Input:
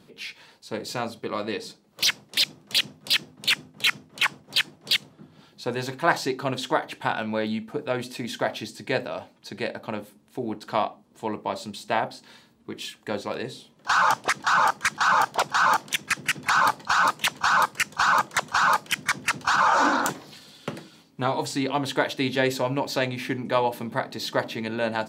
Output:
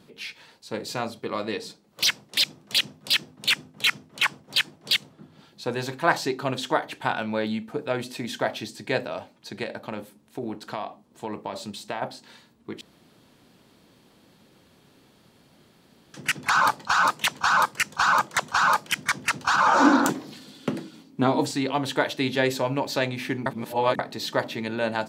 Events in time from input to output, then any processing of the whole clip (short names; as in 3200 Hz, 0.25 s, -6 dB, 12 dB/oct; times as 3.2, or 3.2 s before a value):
9.63–12.02 compressor, threshold -26 dBFS
12.81–16.14 room tone
19.66–21.51 bell 270 Hz +10.5 dB 1.2 oct
23.46–23.99 reverse